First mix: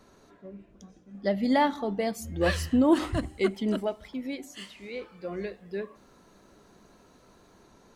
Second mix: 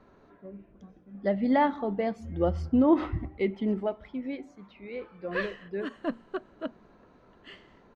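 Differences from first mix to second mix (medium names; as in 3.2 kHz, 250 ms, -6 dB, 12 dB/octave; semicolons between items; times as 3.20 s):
background: entry +2.90 s; master: add low-pass 2.2 kHz 12 dB/octave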